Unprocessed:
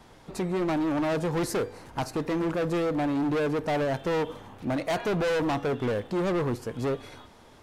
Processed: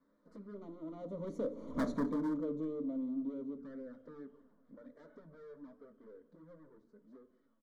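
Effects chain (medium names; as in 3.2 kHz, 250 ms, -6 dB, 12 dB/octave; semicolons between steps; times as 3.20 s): Doppler pass-by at 1.80 s, 34 m/s, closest 2.2 m; low-pass 3.5 kHz 12 dB/octave; peaking EQ 310 Hz +14.5 dB 1.1 oct; hum notches 60/120/180/240/300/360/420 Hz; in parallel at -3 dB: compression 6:1, threshold -55 dBFS, peak gain reduction 30.5 dB; on the sum: touch-sensitive flanger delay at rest 11.7 ms, full sweep at -41 dBFS; hard clipper -30.5 dBFS, distortion -7 dB; static phaser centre 530 Hz, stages 8; delay 177 ms -21 dB; on a send at -13 dB: reverberation RT60 0.45 s, pre-delay 3 ms; on the sum: trim +3.5 dB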